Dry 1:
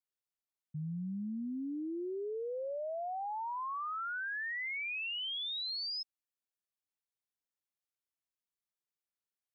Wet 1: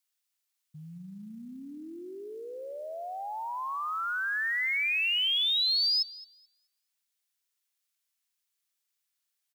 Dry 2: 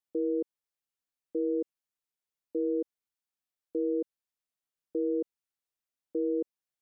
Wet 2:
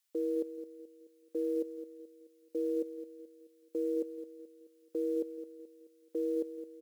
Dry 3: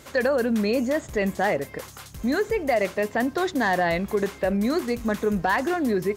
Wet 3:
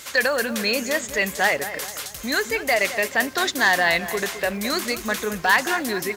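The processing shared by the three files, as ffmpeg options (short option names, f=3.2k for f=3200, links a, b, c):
-filter_complex "[0:a]tiltshelf=f=970:g=-10,asplit=2[a][b];[b]adelay=215,lowpass=f=2.1k:p=1,volume=-11.5dB,asplit=2[c][d];[d]adelay=215,lowpass=f=2.1k:p=1,volume=0.46,asplit=2[e][f];[f]adelay=215,lowpass=f=2.1k:p=1,volume=0.46,asplit=2[g][h];[h]adelay=215,lowpass=f=2.1k:p=1,volume=0.46,asplit=2[i][j];[j]adelay=215,lowpass=f=2.1k:p=1,volume=0.46[k];[a][c][e][g][i][k]amix=inputs=6:normalize=0,acrusher=bits=8:mode=log:mix=0:aa=0.000001,volume=3dB"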